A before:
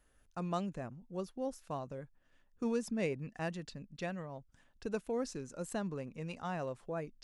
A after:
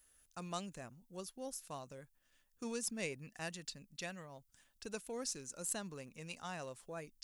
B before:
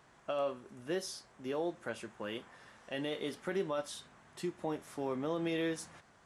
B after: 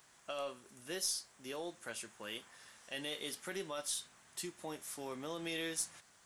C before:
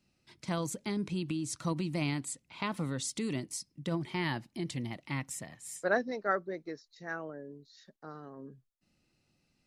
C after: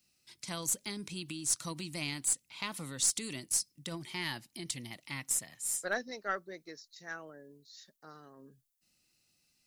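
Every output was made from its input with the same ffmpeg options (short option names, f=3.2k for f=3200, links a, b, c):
-af "crystalizer=i=7.5:c=0,aeval=exprs='0.501*(cos(1*acos(clip(val(0)/0.501,-1,1)))-cos(1*PI/2))+0.0224*(cos(4*acos(clip(val(0)/0.501,-1,1)))-cos(4*PI/2))':c=same,volume=-9dB"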